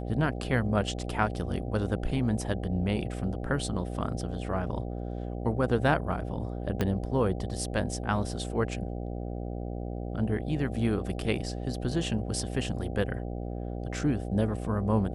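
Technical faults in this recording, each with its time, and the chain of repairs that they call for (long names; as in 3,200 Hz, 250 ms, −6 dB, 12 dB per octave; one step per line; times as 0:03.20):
mains buzz 60 Hz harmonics 13 −35 dBFS
0:06.81: click −14 dBFS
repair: click removal
hum removal 60 Hz, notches 13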